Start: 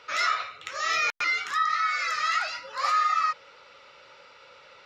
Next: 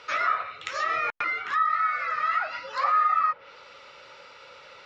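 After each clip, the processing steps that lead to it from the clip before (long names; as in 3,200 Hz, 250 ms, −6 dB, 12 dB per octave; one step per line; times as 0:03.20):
treble cut that deepens with the level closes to 1,500 Hz, closed at −25 dBFS
level +3.5 dB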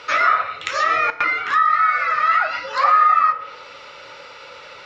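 feedback delay network reverb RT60 0.77 s, high-frequency decay 0.8×, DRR 10.5 dB
level +8.5 dB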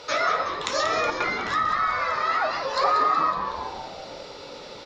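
flat-topped bell 1,800 Hz −10.5 dB
on a send: echo with shifted repeats 185 ms, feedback 62%, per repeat −120 Hz, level −8 dB
on the sum: level +2 dB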